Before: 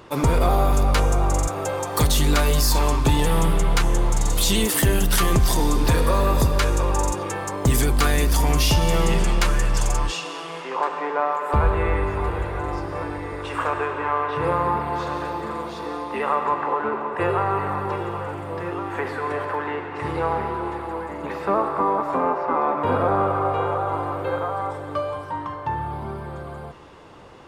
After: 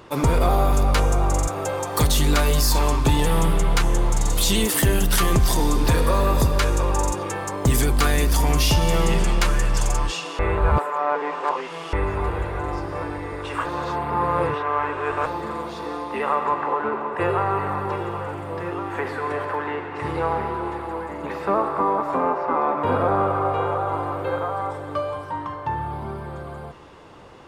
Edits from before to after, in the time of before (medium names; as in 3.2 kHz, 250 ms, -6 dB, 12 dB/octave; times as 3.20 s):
10.39–11.93 s: reverse
13.65–15.26 s: reverse